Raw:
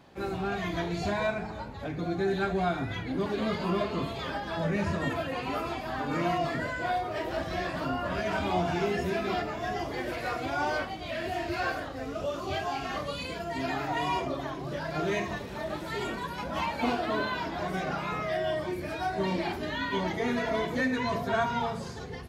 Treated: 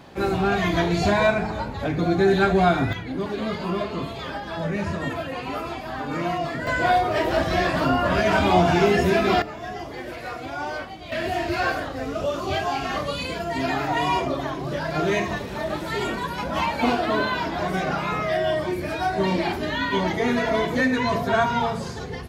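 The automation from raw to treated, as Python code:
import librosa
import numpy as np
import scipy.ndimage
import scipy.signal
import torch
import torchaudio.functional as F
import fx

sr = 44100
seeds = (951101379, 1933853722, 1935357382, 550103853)

y = fx.gain(x, sr, db=fx.steps((0.0, 10.0), (2.93, 2.5), (6.67, 10.5), (9.42, -0.5), (11.12, 7.0)))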